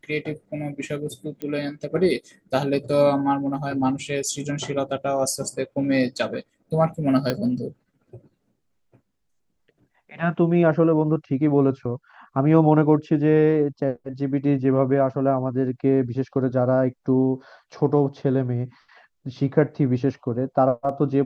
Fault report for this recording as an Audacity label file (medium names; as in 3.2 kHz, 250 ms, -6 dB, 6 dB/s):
1.420000	1.420000	pop -19 dBFS
7.300000	7.300000	pop -9 dBFS